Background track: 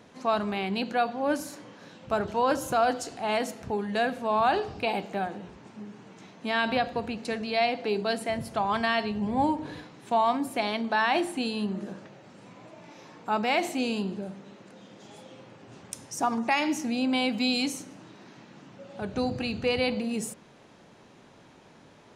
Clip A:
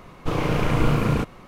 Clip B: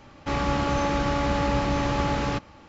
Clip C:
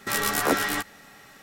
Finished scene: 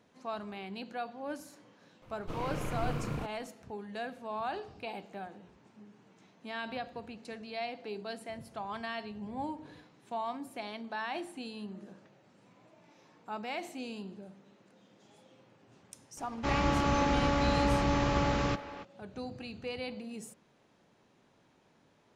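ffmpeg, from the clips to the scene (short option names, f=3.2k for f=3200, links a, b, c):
-filter_complex "[0:a]volume=-12.5dB[a];[2:a]asplit=2[b][c];[c]adelay=280,highpass=300,lowpass=3.4k,asoftclip=type=hard:threshold=-21.5dB,volume=-12dB[d];[b][d]amix=inputs=2:normalize=0[e];[1:a]atrim=end=1.47,asetpts=PTS-STARTPTS,volume=-15dB,afade=t=in:d=0.004:c=hsin,afade=t=out:st=1.466:d=0.004:c=hsin,adelay=2020[f];[e]atrim=end=2.68,asetpts=PTS-STARTPTS,volume=-4dB,afade=t=in:d=0.004:c=hsin,afade=t=out:st=2.676:d=0.004:c=hsin,adelay=16170[g];[a][f][g]amix=inputs=3:normalize=0"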